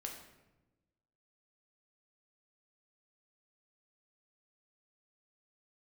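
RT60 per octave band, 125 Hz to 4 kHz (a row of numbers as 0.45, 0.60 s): 1.5, 1.5, 1.2, 0.95, 0.85, 0.70 s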